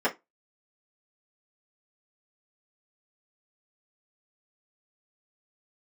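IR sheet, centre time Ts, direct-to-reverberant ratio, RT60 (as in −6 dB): 12 ms, −10.0 dB, 0.20 s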